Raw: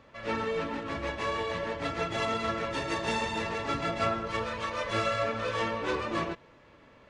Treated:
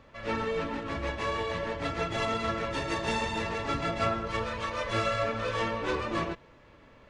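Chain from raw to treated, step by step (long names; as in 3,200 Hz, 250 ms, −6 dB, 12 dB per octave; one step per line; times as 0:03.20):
low-shelf EQ 62 Hz +10.5 dB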